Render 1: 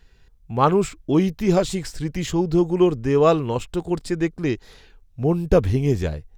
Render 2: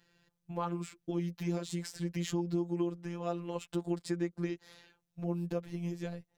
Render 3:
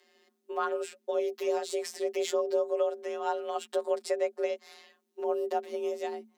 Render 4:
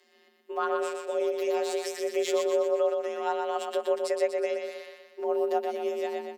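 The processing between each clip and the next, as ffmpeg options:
-af "acompressor=threshold=0.0562:ratio=6,highpass=f=83:w=0.5412,highpass=f=83:w=1.3066,afftfilt=real='hypot(re,im)*cos(PI*b)':imag='0':win_size=1024:overlap=0.75,volume=0.631"
-af "afreqshift=220,volume=1.68"
-af "aecho=1:1:122|244|366|488|610|732|854:0.562|0.292|0.152|0.0791|0.0411|0.0214|0.0111,volume=1.12" -ar 48000 -c:a libopus -b:a 256k

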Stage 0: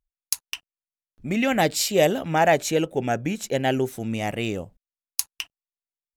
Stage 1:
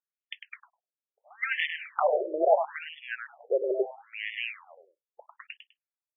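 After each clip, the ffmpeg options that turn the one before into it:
-af "aeval=exprs='(mod(3.35*val(0)+1,2)-1)/3.35':c=same,aecho=1:1:101|202|303:0.447|0.103|0.0236,afftfilt=real='re*between(b*sr/1024,430*pow(2500/430,0.5+0.5*sin(2*PI*0.75*pts/sr))/1.41,430*pow(2500/430,0.5+0.5*sin(2*PI*0.75*pts/sr))*1.41)':imag='im*between(b*sr/1024,430*pow(2500/430,0.5+0.5*sin(2*PI*0.75*pts/sr))/1.41,430*pow(2500/430,0.5+0.5*sin(2*PI*0.75*pts/sr))*1.41)':win_size=1024:overlap=0.75"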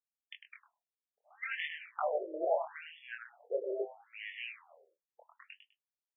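-af "flanger=delay=19.5:depth=7.2:speed=0.51,volume=0.501"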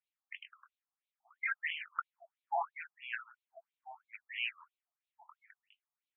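-af "afftfilt=real='re*between(b*sr/1024,910*pow(3100/910,0.5+0.5*sin(2*PI*3*pts/sr))/1.41,910*pow(3100/910,0.5+0.5*sin(2*PI*3*pts/sr))*1.41)':imag='im*between(b*sr/1024,910*pow(3100/910,0.5+0.5*sin(2*PI*3*pts/sr))/1.41,910*pow(3100/910,0.5+0.5*sin(2*PI*3*pts/sr))*1.41)':win_size=1024:overlap=0.75,volume=2.24"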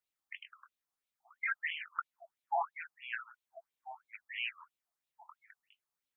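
-filter_complex "[0:a]equalizer=f=2600:t=o:w=0.96:g=-3.5,asplit=2[s0][s1];[s1]alimiter=level_in=2.11:limit=0.0631:level=0:latency=1:release=33,volume=0.473,volume=0.794[s2];[s0][s2]amix=inputs=2:normalize=0,volume=0.794"

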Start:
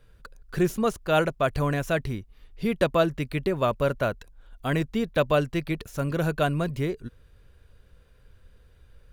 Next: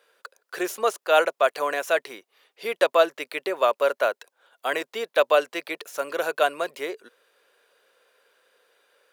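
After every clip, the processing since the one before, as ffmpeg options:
-af "highpass=f=460:w=0.5412,highpass=f=460:w=1.3066,volume=1.68"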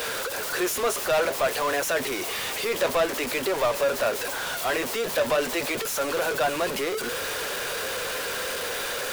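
-af "aeval=exprs='val(0)+0.5*0.0841*sgn(val(0))':c=same,flanger=delay=6.2:depth=6.6:regen=-51:speed=0.54:shape=triangular,asoftclip=type=tanh:threshold=0.119,volume=1.19"

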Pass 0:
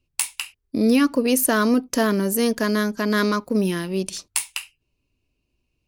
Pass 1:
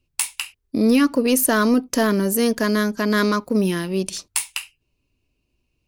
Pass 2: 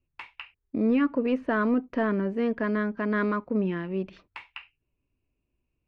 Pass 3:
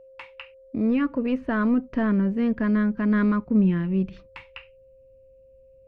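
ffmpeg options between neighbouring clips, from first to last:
-af "asoftclip=type=tanh:threshold=0.422,volume=1.26"
-af "lowpass=f=2400:w=0.5412,lowpass=f=2400:w=1.3066,volume=0.447"
-af "aeval=exprs='val(0)+0.00447*sin(2*PI*530*n/s)':c=same,asubboost=boost=7.5:cutoff=190"

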